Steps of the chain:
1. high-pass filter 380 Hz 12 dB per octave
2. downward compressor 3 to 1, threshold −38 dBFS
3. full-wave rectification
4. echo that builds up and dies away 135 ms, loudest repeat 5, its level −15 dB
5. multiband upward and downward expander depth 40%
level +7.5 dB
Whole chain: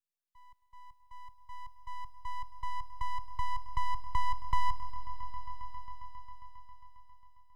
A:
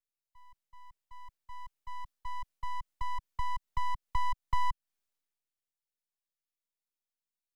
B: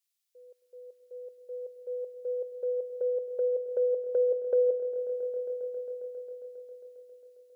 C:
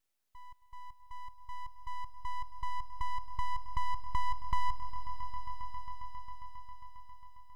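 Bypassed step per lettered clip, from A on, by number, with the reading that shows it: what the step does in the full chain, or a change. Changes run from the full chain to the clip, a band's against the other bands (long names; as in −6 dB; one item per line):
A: 4, change in crest factor +3.0 dB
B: 3, change in momentary loudness spread −1 LU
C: 5, change in momentary loudness spread −4 LU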